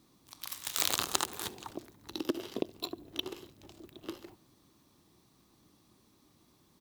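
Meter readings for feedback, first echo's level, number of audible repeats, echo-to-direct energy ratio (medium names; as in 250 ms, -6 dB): 41%, -23.0 dB, 2, -22.0 dB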